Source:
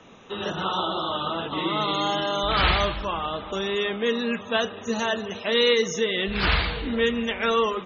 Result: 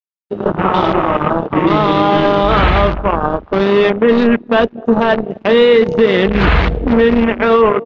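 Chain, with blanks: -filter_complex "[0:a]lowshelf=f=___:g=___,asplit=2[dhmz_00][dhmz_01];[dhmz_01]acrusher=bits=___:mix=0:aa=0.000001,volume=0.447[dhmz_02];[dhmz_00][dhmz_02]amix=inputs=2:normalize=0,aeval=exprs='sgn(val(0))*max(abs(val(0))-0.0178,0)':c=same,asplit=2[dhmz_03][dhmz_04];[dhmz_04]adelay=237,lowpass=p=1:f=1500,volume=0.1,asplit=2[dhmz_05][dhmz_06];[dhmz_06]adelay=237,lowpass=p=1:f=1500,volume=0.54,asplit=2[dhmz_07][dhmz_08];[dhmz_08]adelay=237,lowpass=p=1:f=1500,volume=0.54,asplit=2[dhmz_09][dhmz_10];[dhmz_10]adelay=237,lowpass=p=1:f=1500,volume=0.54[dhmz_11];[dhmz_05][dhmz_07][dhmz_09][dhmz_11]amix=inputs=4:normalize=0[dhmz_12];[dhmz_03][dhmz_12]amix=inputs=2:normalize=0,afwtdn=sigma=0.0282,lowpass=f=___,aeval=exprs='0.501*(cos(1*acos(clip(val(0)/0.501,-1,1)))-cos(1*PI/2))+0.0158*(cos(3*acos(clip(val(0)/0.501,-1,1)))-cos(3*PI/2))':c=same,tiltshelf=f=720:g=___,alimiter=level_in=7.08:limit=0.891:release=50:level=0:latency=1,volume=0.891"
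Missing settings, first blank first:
89, -4.5, 3, 2400, 4.5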